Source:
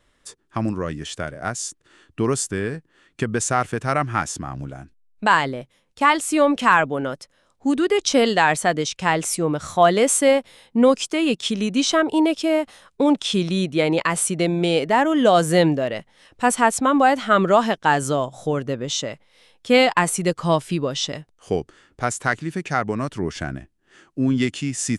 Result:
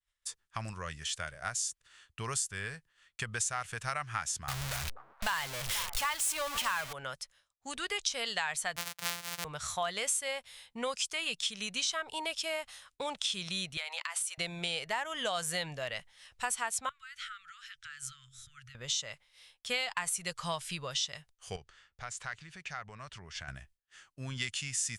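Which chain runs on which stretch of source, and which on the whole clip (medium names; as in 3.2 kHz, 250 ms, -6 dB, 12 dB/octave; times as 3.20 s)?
4.48–6.93 s: jump at every zero crossing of -19.5 dBFS + repeats whose band climbs or falls 242 ms, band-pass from 370 Hz, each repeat 1.4 oct, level -10.5 dB
8.76–9.45 s: sorted samples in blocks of 256 samples + high-pass 170 Hz
13.77–14.38 s: inverse Chebyshev high-pass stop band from 200 Hz, stop band 60 dB + compression, threshold -27 dBFS
16.89–18.75 s: treble shelf 8.5 kHz -8.5 dB + compression 8:1, threshold -30 dBFS + Chebyshev band-stop 130–1300 Hz, order 5
21.56–23.48 s: distance through air 85 m + compression 2:1, threshold -34 dBFS
whole clip: amplifier tone stack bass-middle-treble 10-0-10; compression 4:1, threshold -31 dBFS; expander -57 dBFS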